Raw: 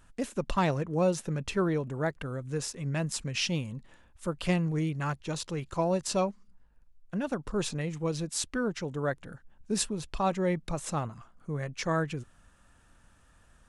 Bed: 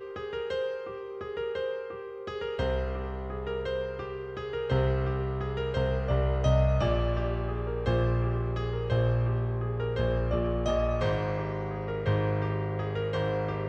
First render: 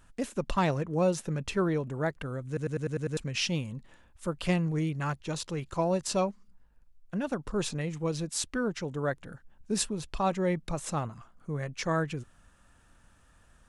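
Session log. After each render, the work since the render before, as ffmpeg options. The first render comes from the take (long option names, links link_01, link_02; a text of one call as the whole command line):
ffmpeg -i in.wav -filter_complex "[0:a]asplit=8[link_01][link_02][link_03][link_04][link_05][link_06][link_07][link_08];[link_01]atrim=end=2.572[link_09];[link_02]atrim=start=2.468:end=2.572[link_10];[link_03]atrim=start=2.468:end=2.572[link_11];[link_04]atrim=start=2.468:end=2.572[link_12];[link_05]atrim=start=2.468:end=2.572[link_13];[link_06]atrim=start=2.468:end=2.572[link_14];[link_07]atrim=start=2.468:end=2.572[link_15];[link_08]atrim=start=3.168[link_16];[link_09][link_10]acrossfade=duration=0.004:curve1=hsin:curve2=hsin[link_17];[link_17][link_11]acrossfade=duration=0.004:curve1=hsin:curve2=hsin[link_18];[link_18][link_12]acrossfade=duration=0.004:curve1=hsin:curve2=hsin[link_19];[link_19][link_13]acrossfade=duration=0.004:curve1=hsin:curve2=hsin[link_20];[link_20][link_14]acrossfade=duration=0.004:curve1=hsin:curve2=hsin[link_21];[link_21][link_15]acrossfade=duration=0.004:curve1=hsin:curve2=hsin[link_22];[link_22][link_16]acrossfade=duration=0.004:curve1=hsin:curve2=hsin" out.wav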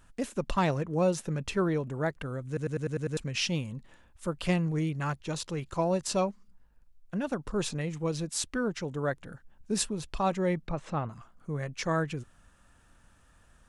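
ffmpeg -i in.wav -filter_complex "[0:a]asettb=1/sr,asplit=3[link_01][link_02][link_03];[link_01]atrim=end=10.674[link_04];[link_02]atrim=start=10.67:end=11.09,asetpts=PTS-STARTPTS,afade=type=in:duration=0.004:curve=qsin,afade=type=out:start_time=0.416:duration=0.004:curve=qsin,lowpass=2800[link_05];[link_03]atrim=start=11.086[link_06];[link_04][link_05]acrossfade=duration=0.004:curve1=hsin:curve2=qsin[link_07];[link_07][link_06]acrossfade=duration=0.004:curve1=qsin:curve2=hsin" out.wav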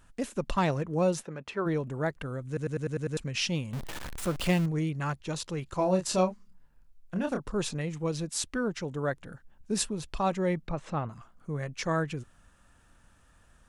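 ffmpeg -i in.wav -filter_complex "[0:a]asplit=3[link_01][link_02][link_03];[link_01]afade=type=out:start_time=1.22:duration=0.02[link_04];[link_02]bandpass=frequency=1000:width_type=q:width=0.51,afade=type=in:start_time=1.22:duration=0.02,afade=type=out:start_time=1.65:duration=0.02[link_05];[link_03]afade=type=in:start_time=1.65:duration=0.02[link_06];[link_04][link_05][link_06]amix=inputs=3:normalize=0,asettb=1/sr,asplit=3[link_07][link_08][link_09];[link_07]atrim=end=3.734[link_10];[link_08]atrim=start=3.73:end=4.66,asetpts=PTS-STARTPTS,afade=type=in:duration=0.004:curve=qsin,afade=type=out:start_time=0.926:duration=0.004:curve=qsin,aeval=exprs='val(0)+0.5*0.0251*sgn(val(0))':channel_layout=same[link_11];[link_09]atrim=start=4.656[link_12];[link_10][link_11]acrossfade=duration=0.004:curve1=hsin:curve2=qsin[link_13];[link_13][link_12]acrossfade=duration=0.004:curve1=qsin:curve2=hsin,asettb=1/sr,asplit=3[link_14][link_15][link_16];[link_14]atrim=end=5.764[link_17];[link_15]atrim=start=5.76:end=7.4,asetpts=PTS-STARTPTS,afade=type=in:duration=0.004:curve=qsin,afade=type=out:start_time=1.636:duration=0.004:curve=qsin,asplit=2[link_18][link_19];[link_19]adelay=27,volume=-5dB[link_20];[link_18][link_20]amix=inputs=2:normalize=0,atrim=end_sample=72324[link_21];[link_16]atrim=start=7.396[link_22];[link_17][link_21]acrossfade=duration=0.004:curve1=hsin:curve2=qsin[link_23];[link_23][link_22]acrossfade=duration=0.004:curve1=qsin:curve2=hsin" out.wav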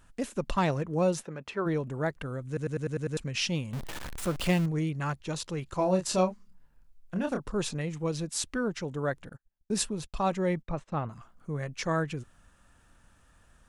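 ffmpeg -i in.wav -filter_complex "[0:a]asettb=1/sr,asplit=3[link_01][link_02][link_03];[link_01]atrim=end=9.294[link_04];[link_02]atrim=start=9.29:end=11.1,asetpts=PTS-STARTPTS,afade=type=in:duration=0.004:curve=qsin,afade=type=out:start_time=1.806:duration=0.004:curve=qsin,agate=range=-30dB:threshold=-45dB:ratio=16:release=100:detection=peak[link_05];[link_03]atrim=start=11.096[link_06];[link_04][link_05]acrossfade=duration=0.004:curve1=hsin:curve2=qsin[link_07];[link_07][link_06]acrossfade=duration=0.004:curve1=qsin:curve2=hsin" out.wav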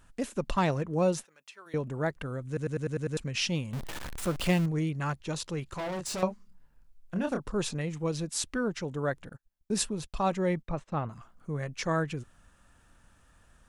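ffmpeg -i in.wav -filter_complex "[0:a]asettb=1/sr,asplit=3[link_01][link_02][link_03];[link_01]atrim=end=1.254[link_04];[link_02]atrim=start=1.25:end=1.74,asetpts=PTS-STARTPTS,afade=type=in:duration=0.004:curve=qsin,afade=type=out:start_time=0.486:duration=0.004:curve=qsin,aderivative[link_05];[link_03]atrim=start=1.736[link_06];[link_04][link_05]acrossfade=duration=0.004:curve1=hsin:curve2=qsin[link_07];[link_07][link_06]acrossfade=duration=0.004:curve1=qsin:curve2=hsin,asettb=1/sr,asplit=3[link_08][link_09][link_10];[link_08]atrim=end=5.654[link_11];[link_09]atrim=start=5.65:end=6.23,asetpts=PTS-STARTPTS,afade=type=in:duration=0.004:curve=qsin,afade=type=out:start_time=0.576:duration=0.004:curve=qsin,asoftclip=type=hard:threshold=-32.5dB[link_12];[link_10]atrim=start=6.226[link_13];[link_11][link_12]acrossfade=duration=0.004:curve1=hsin:curve2=qsin[link_14];[link_14][link_13]acrossfade=duration=0.004:curve1=qsin:curve2=hsin" out.wav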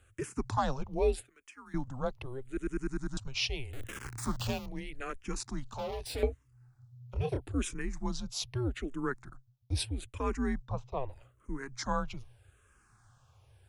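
ffmpeg -i in.wav -filter_complex "[0:a]afreqshift=-130,asplit=2[link_01][link_02];[link_02]afreqshift=-0.8[link_03];[link_01][link_03]amix=inputs=2:normalize=1" out.wav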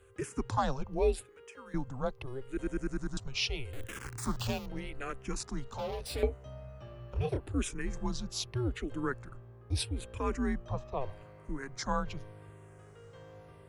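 ffmpeg -i in.wav -i bed.wav -filter_complex "[1:a]volume=-23dB[link_01];[0:a][link_01]amix=inputs=2:normalize=0" out.wav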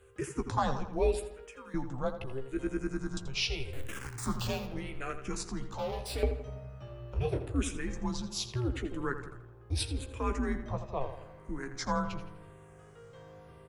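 ffmpeg -i in.wav -filter_complex "[0:a]asplit=2[link_01][link_02];[link_02]adelay=15,volume=-8.5dB[link_03];[link_01][link_03]amix=inputs=2:normalize=0,asplit=2[link_04][link_05];[link_05]adelay=83,lowpass=frequency=3900:poles=1,volume=-10dB,asplit=2[link_06][link_07];[link_07]adelay=83,lowpass=frequency=3900:poles=1,volume=0.53,asplit=2[link_08][link_09];[link_09]adelay=83,lowpass=frequency=3900:poles=1,volume=0.53,asplit=2[link_10][link_11];[link_11]adelay=83,lowpass=frequency=3900:poles=1,volume=0.53,asplit=2[link_12][link_13];[link_13]adelay=83,lowpass=frequency=3900:poles=1,volume=0.53,asplit=2[link_14][link_15];[link_15]adelay=83,lowpass=frequency=3900:poles=1,volume=0.53[link_16];[link_06][link_08][link_10][link_12][link_14][link_16]amix=inputs=6:normalize=0[link_17];[link_04][link_17]amix=inputs=2:normalize=0" out.wav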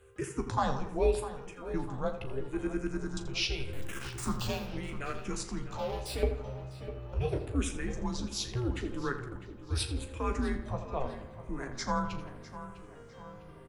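ffmpeg -i in.wav -filter_complex "[0:a]asplit=2[link_01][link_02];[link_02]adelay=38,volume=-12.5dB[link_03];[link_01][link_03]amix=inputs=2:normalize=0,asplit=2[link_04][link_05];[link_05]adelay=652,lowpass=frequency=3500:poles=1,volume=-13dB,asplit=2[link_06][link_07];[link_07]adelay=652,lowpass=frequency=3500:poles=1,volume=0.52,asplit=2[link_08][link_09];[link_09]adelay=652,lowpass=frequency=3500:poles=1,volume=0.52,asplit=2[link_10][link_11];[link_11]adelay=652,lowpass=frequency=3500:poles=1,volume=0.52,asplit=2[link_12][link_13];[link_13]adelay=652,lowpass=frequency=3500:poles=1,volume=0.52[link_14];[link_04][link_06][link_08][link_10][link_12][link_14]amix=inputs=6:normalize=0" out.wav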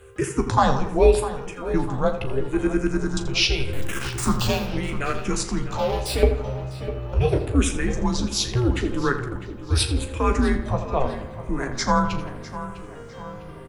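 ffmpeg -i in.wav -af "volume=11.5dB" out.wav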